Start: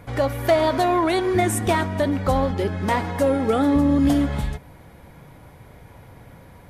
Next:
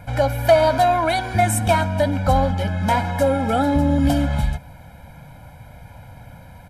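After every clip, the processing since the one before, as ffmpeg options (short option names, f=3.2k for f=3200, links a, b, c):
-af "aecho=1:1:1.3:0.96"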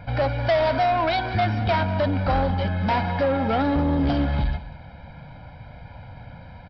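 -af "aresample=11025,asoftclip=type=tanh:threshold=-16.5dB,aresample=44100,aecho=1:1:194:0.15"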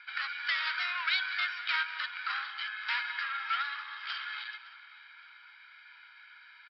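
-filter_complex "[0:a]asuperpass=centerf=2600:order=12:qfactor=0.63,asplit=2[a][b];[b]adelay=563,lowpass=f=4.1k:p=1,volume=-18dB,asplit=2[c][d];[d]adelay=563,lowpass=f=4.1k:p=1,volume=0.43,asplit=2[e][f];[f]adelay=563,lowpass=f=4.1k:p=1,volume=0.43,asplit=2[g][h];[h]adelay=563,lowpass=f=4.1k:p=1,volume=0.43[i];[a][c][e][g][i]amix=inputs=5:normalize=0"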